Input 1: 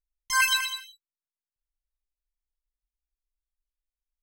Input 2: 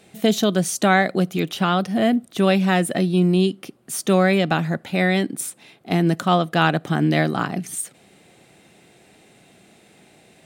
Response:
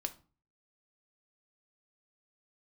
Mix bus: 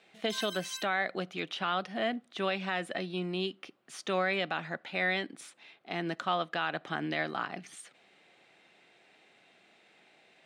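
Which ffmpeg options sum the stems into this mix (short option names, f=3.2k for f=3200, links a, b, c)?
-filter_complex "[0:a]acompressor=threshold=-28dB:ratio=6,volume=-0.5dB[a];[1:a]lowpass=3.5k,volume=-4.5dB,asplit=3[b][c][d];[c]volume=-19dB[e];[d]apad=whole_len=186446[f];[a][f]sidechaincompress=threshold=-31dB:ratio=8:attack=16:release=232[g];[2:a]atrim=start_sample=2205[h];[e][h]afir=irnorm=-1:irlink=0[i];[g][b][i]amix=inputs=3:normalize=0,highpass=f=1.2k:p=1,alimiter=limit=-19dB:level=0:latency=1:release=75"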